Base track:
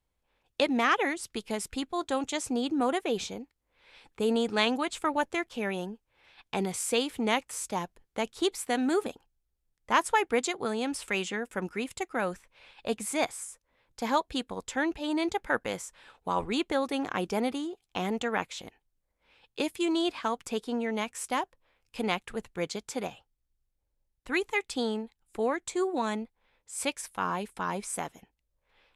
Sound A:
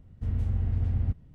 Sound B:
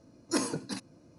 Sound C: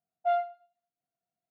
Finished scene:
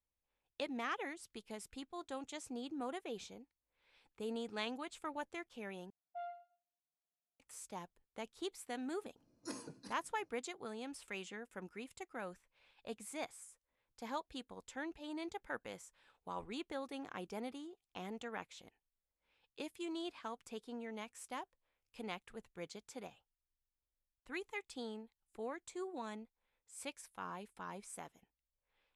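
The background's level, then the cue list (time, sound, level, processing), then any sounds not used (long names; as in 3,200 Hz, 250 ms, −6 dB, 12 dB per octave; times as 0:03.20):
base track −15 dB
0:05.90: overwrite with C −14 dB + downward compressor 2 to 1, threshold −32 dBFS
0:09.14: mix in B −16.5 dB, fades 0.05 s
not used: A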